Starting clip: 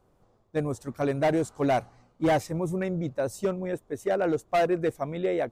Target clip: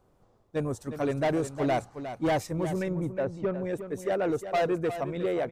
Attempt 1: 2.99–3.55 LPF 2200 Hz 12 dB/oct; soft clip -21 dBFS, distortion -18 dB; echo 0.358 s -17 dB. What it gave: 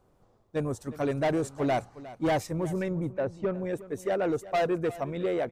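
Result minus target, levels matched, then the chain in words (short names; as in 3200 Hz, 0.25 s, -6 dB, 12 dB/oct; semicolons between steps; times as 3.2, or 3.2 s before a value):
echo-to-direct -6.5 dB
2.99–3.55 LPF 2200 Hz 12 dB/oct; soft clip -21 dBFS, distortion -18 dB; echo 0.358 s -10.5 dB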